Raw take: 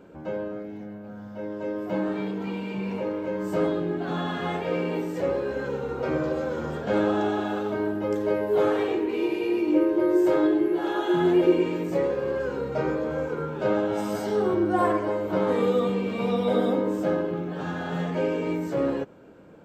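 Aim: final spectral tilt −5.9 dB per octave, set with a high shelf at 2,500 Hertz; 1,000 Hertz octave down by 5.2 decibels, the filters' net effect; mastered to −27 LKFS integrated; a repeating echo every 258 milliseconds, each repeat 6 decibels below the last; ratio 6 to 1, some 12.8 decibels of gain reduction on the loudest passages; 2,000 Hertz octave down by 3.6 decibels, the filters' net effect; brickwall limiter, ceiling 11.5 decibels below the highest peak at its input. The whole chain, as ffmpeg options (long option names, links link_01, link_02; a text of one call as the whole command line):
ffmpeg -i in.wav -af "equalizer=frequency=1000:width_type=o:gain=-7,equalizer=frequency=2000:width_type=o:gain=-5.5,highshelf=frequency=2500:gain=7.5,acompressor=threshold=-29dB:ratio=6,alimiter=level_in=8dB:limit=-24dB:level=0:latency=1,volume=-8dB,aecho=1:1:258|516|774|1032|1290|1548:0.501|0.251|0.125|0.0626|0.0313|0.0157,volume=11dB" out.wav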